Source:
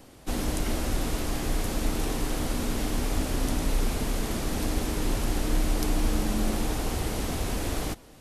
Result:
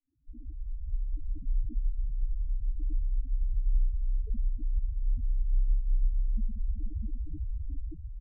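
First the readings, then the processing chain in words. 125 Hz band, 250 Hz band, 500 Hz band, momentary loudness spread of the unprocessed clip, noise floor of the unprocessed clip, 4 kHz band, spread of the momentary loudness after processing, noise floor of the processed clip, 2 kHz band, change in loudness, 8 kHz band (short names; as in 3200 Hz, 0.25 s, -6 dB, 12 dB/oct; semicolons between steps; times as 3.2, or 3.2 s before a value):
-4.5 dB, -20.5 dB, -33.5 dB, 3 LU, -50 dBFS, under -40 dB, 9 LU, -43 dBFS, under -40 dB, -5.5 dB, under -40 dB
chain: opening faded in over 1.08 s; outdoor echo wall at 110 m, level -6 dB; loudest bins only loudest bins 2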